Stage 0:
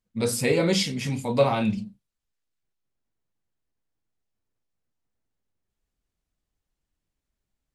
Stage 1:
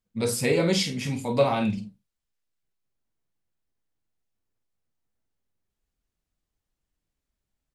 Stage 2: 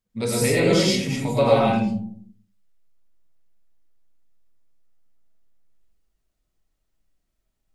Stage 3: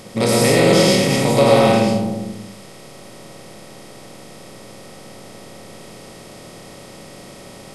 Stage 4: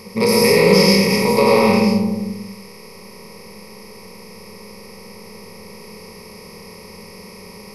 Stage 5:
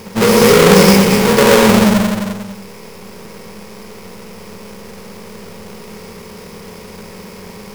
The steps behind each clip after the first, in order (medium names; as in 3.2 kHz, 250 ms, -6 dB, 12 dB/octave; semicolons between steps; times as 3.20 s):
doubling 48 ms -11.5 dB; trim -1 dB
algorithmic reverb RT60 0.59 s, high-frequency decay 0.3×, pre-delay 65 ms, DRR -3.5 dB
spectral levelling over time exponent 0.4; trim +1.5 dB
rippled EQ curve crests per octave 0.85, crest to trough 17 dB; trim -3 dB
square wave that keeps the level